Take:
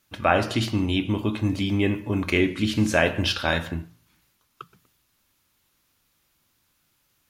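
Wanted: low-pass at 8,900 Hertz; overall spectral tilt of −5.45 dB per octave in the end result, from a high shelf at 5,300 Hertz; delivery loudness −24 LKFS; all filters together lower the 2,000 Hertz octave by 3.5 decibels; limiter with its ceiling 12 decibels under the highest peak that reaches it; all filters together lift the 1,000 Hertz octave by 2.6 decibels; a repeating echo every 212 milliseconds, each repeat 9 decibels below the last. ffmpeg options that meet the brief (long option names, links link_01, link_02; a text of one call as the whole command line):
ffmpeg -i in.wav -af "lowpass=8900,equalizer=frequency=1000:width_type=o:gain=5.5,equalizer=frequency=2000:width_type=o:gain=-5.5,highshelf=frequency=5300:gain=-8.5,alimiter=limit=-15.5dB:level=0:latency=1,aecho=1:1:212|424|636|848:0.355|0.124|0.0435|0.0152,volume=2.5dB" out.wav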